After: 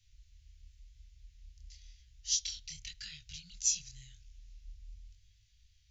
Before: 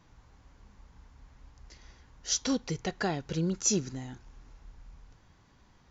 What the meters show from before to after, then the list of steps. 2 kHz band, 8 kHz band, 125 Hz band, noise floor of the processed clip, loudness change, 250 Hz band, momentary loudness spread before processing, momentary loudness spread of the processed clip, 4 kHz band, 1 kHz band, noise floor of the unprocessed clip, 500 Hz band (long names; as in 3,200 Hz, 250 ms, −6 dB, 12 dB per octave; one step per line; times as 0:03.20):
−12.5 dB, can't be measured, −18.0 dB, −67 dBFS, −4.0 dB, below −30 dB, 16 LU, 23 LU, −1.0 dB, below −35 dB, −62 dBFS, below −40 dB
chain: chorus effect 0.93 Hz, delay 19 ms, depth 7.6 ms
inverse Chebyshev band-stop filter 310–740 Hz, stop band 80 dB
level +2 dB